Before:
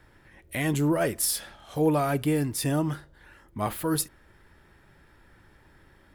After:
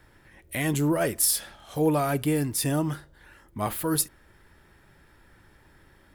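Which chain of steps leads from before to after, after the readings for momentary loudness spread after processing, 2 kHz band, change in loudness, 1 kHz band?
11 LU, +0.5 dB, +1.0 dB, 0.0 dB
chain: high-shelf EQ 5,900 Hz +5 dB

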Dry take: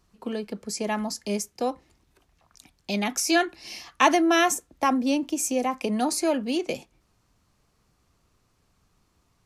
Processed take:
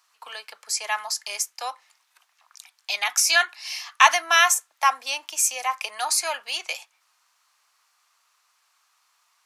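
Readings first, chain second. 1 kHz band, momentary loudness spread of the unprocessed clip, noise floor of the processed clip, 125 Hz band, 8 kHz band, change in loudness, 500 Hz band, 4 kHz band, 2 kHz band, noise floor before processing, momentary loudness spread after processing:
+3.0 dB, 13 LU, −69 dBFS, can't be measured, +7.0 dB, +3.5 dB, −8.5 dB, +7.0 dB, +7.0 dB, −69 dBFS, 17 LU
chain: high-pass filter 950 Hz 24 dB per octave
level +7 dB

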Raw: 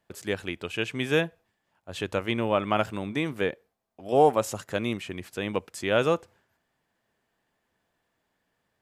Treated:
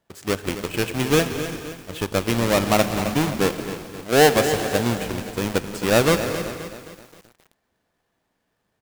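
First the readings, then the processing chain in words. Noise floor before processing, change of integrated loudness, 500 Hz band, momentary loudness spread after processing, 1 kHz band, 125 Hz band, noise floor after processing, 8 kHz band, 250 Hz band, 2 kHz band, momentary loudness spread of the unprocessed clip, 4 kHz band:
−78 dBFS, +6.0 dB, +5.5 dB, 15 LU, +4.5 dB, +9.0 dB, −74 dBFS, +14.0 dB, +7.5 dB, +7.0 dB, 12 LU, +8.5 dB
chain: each half-wave held at its own peak
reverb whose tail is shaped and stops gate 500 ms flat, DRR 9.5 dB
in parallel at −5 dB: centre clipping without the shift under −27 dBFS
on the sum: echo with shifted repeats 182 ms, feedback 43%, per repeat −61 Hz, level −15.5 dB
feedback echo at a low word length 263 ms, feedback 55%, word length 6 bits, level −11 dB
level −2.5 dB

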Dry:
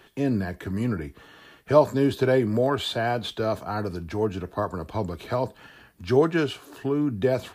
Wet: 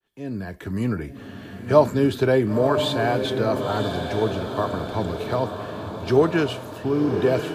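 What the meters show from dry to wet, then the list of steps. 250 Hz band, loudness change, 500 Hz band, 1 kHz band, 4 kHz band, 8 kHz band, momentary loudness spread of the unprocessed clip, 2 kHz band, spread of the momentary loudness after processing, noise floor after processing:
+2.5 dB, +2.5 dB, +3.0 dB, +3.0 dB, +3.0 dB, +3.0 dB, 10 LU, +3.0 dB, 13 LU, −39 dBFS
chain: fade in at the beginning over 0.79 s
feedback delay with all-pass diffusion 1,012 ms, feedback 50%, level −6.5 dB
level +2 dB

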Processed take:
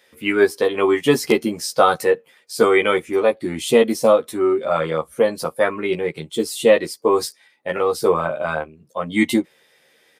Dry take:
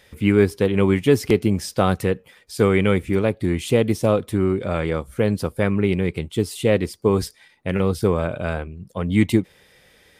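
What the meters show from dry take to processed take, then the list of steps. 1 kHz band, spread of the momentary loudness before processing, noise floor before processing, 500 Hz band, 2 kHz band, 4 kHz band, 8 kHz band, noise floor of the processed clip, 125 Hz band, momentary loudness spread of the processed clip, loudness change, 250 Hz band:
+7.0 dB, 9 LU, −55 dBFS, +4.0 dB, +5.0 dB, +5.0 dB, +5.0 dB, −58 dBFS, −12.5 dB, 9 LU, +2.0 dB, −2.5 dB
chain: noise reduction from a noise print of the clip's start 8 dB
high-pass filter 270 Hz 12 dB per octave
dynamic equaliser 1,500 Hz, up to +3 dB, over −37 dBFS, Q 0.93
double-tracking delay 13 ms −3 dB
level +3.5 dB

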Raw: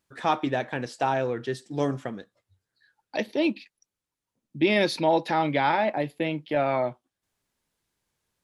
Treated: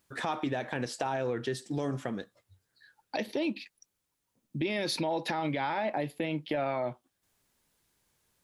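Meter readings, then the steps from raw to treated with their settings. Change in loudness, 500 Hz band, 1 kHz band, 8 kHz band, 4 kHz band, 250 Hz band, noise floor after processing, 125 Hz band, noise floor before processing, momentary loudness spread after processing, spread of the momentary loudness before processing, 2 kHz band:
−7.0 dB, −7.0 dB, −8.0 dB, +1.0 dB, −4.0 dB, −6.0 dB, −82 dBFS, −4.0 dB, below −85 dBFS, 8 LU, 10 LU, −6.5 dB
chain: high-shelf EQ 9,600 Hz +6.5 dB
brickwall limiter −21 dBFS, peak gain reduction 10 dB
downward compressor 2 to 1, threshold −36 dBFS, peak gain reduction 6.5 dB
level +4 dB

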